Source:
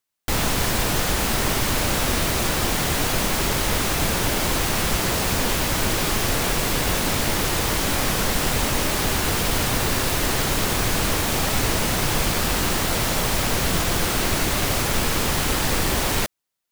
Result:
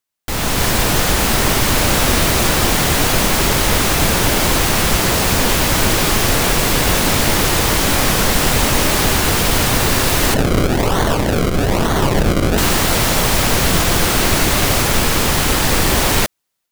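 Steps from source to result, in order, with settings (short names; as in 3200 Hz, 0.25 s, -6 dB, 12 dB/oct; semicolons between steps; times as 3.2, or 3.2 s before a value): AGC gain up to 10.5 dB; 10.34–12.58 decimation with a swept rate 34×, swing 100% 1.1 Hz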